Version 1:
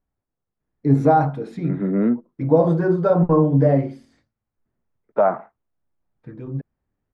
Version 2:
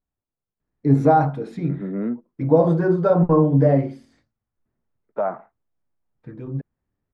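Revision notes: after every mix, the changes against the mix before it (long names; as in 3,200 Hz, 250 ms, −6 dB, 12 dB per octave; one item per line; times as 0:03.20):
second voice −6.5 dB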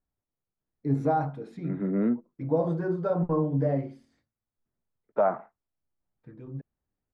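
first voice −10.0 dB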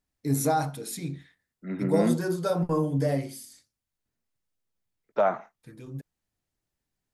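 first voice: entry −0.60 s
master: remove low-pass filter 1,300 Hz 12 dB per octave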